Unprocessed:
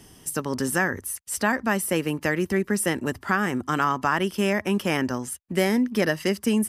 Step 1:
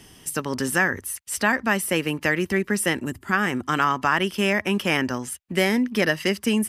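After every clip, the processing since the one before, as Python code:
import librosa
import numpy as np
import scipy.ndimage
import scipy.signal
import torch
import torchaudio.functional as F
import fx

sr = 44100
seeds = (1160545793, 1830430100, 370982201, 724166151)

y = fx.spec_box(x, sr, start_s=3.05, length_s=0.28, low_hz=400.0, high_hz=6400.0, gain_db=-9)
y = fx.peak_eq(y, sr, hz=2600.0, db=6.0, octaves=1.6)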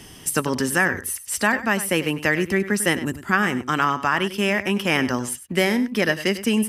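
y = fx.rider(x, sr, range_db=4, speed_s=0.5)
y = y + 10.0 ** (-14.0 / 20.0) * np.pad(y, (int(98 * sr / 1000.0), 0))[:len(y)]
y = y * 10.0 ** (1.5 / 20.0)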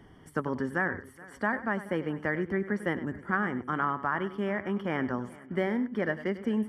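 y = scipy.signal.savgol_filter(x, 41, 4, mode='constant')
y = fx.echo_feedback(y, sr, ms=425, feedback_pct=56, wet_db=-21.0)
y = y * 10.0 ** (-8.0 / 20.0)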